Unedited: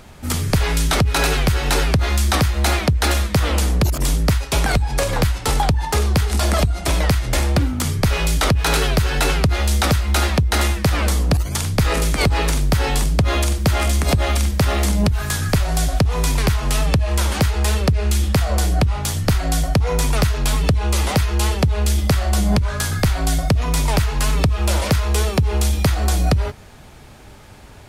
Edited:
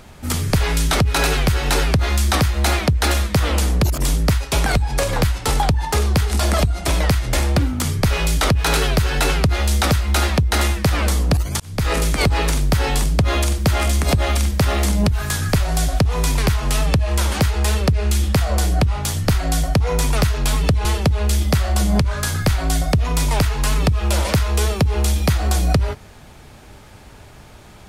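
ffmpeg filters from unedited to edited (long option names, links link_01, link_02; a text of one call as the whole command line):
ffmpeg -i in.wav -filter_complex "[0:a]asplit=3[link_01][link_02][link_03];[link_01]atrim=end=11.6,asetpts=PTS-STARTPTS,afade=type=out:start_time=11.596:duration=0.004:curve=hsin[link_04];[link_02]atrim=start=11.6:end=20.852,asetpts=PTS-STARTPTS,afade=type=in:duration=0.32[link_05];[link_03]atrim=start=21.418[link_06];[link_04][link_05]concat=n=2:v=0:a=1[link_07];[link_07][link_06]acrossfade=duration=0.004:curve1=hsin:curve2=hsin" out.wav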